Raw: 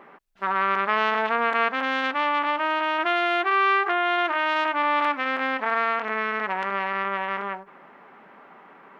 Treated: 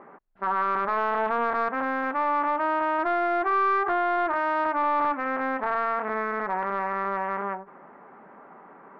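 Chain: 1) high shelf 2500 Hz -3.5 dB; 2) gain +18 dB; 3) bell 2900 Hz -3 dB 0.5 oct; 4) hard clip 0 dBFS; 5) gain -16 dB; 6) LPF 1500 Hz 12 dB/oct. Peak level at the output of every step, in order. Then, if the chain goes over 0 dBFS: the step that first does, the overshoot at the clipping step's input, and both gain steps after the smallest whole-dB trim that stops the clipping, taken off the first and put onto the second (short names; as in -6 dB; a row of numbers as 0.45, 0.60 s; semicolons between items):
-9.0, +9.0, +8.5, 0.0, -16.0, -15.5 dBFS; step 2, 8.5 dB; step 2 +9 dB, step 5 -7 dB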